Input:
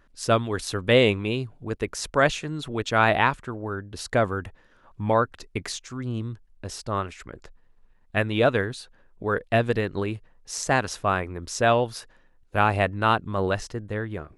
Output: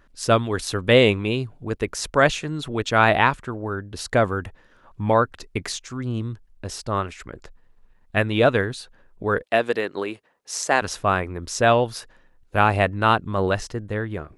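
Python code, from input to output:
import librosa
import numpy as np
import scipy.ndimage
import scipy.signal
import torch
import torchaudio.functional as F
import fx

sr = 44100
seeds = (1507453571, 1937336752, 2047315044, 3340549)

y = fx.highpass(x, sr, hz=330.0, slope=12, at=(9.42, 10.82))
y = y * 10.0 ** (3.0 / 20.0)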